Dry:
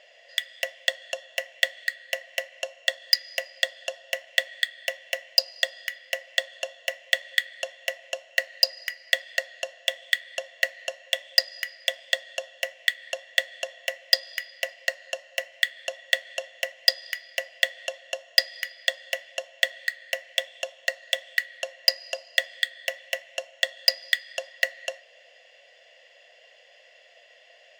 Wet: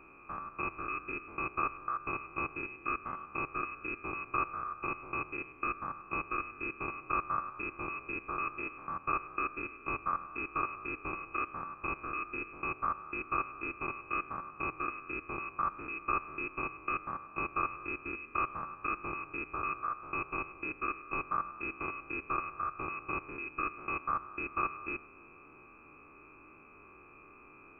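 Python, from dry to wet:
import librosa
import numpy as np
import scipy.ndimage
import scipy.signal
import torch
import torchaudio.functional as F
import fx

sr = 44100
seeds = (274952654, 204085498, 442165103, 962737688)

y = fx.spec_steps(x, sr, hold_ms=100)
y = fx.freq_invert(y, sr, carrier_hz=3100)
y = fx.peak_eq(y, sr, hz=190.0, db=-2.5, octaves=0.45)
y = y * librosa.db_to_amplitude(1.0)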